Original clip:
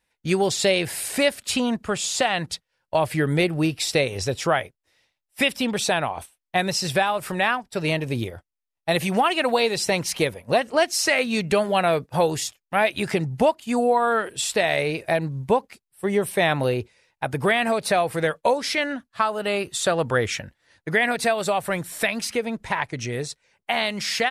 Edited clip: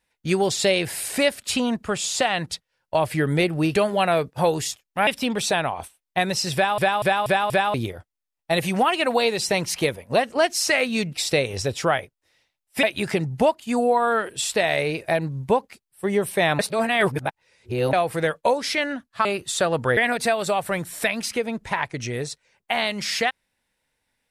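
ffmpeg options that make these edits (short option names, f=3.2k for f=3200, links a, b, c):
-filter_complex "[0:a]asplit=14[a][b][c][d][e][f][g][h][i][j][k][l][m][n];[a]atrim=end=3.752[o];[b]atrim=start=11.508:end=12.832[p];[c]atrim=start=5.448:end=7.162[q];[d]atrim=start=6.918:end=7.162[r];[e]atrim=start=6.918:end=7.162[s];[f]atrim=start=6.918:end=7.162[t];[g]atrim=start=6.918:end=7.162[u];[h]atrim=start=8.118:end=11.512[v];[i]atrim=start=3.748:end=5.452[w];[j]atrim=start=12.828:end=16.592[x];[k]atrim=start=16.588:end=17.932,asetpts=PTS-STARTPTS,areverse[y];[l]atrim=start=17.928:end=19.252[z];[m]atrim=start=19.508:end=20.232[aa];[n]atrim=start=20.958[ab];[o][p]acrossfade=d=0.004:c1=hsin:c2=hsin[ac];[ac][q]acrossfade=d=0.004:c1=hsin:c2=hsin[ad];[ad][r]acrossfade=d=0.004:c1=hsin:c2=hsin[ae];[ae][s]acrossfade=d=0.004:c1=hsin:c2=hsin[af];[af][t]acrossfade=d=0.004:c1=hsin:c2=hsin[ag];[ag][u]acrossfade=d=0.004:c1=hsin:c2=hsin[ah];[ah][v]acrossfade=d=0.004:c1=hsin:c2=hsin[ai];[ai][w]acrossfade=d=0.004:c1=hsin:c2=hsin[aj];[aj][x]acrossfade=d=0.004:c1=hsin:c2=hsin[ak];[ak][y]acrossfade=d=0.004:c1=hsin:c2=hsin[al];[al][z]acrossfade=d=0.004:c1=hsin:c2=hsin[am];[am][aa]acrossfade=d=0.004:c1=hsin:c2=hsin[an];[an][ab]acrossfade=d=0.004:c1=hsin:c2=hsin"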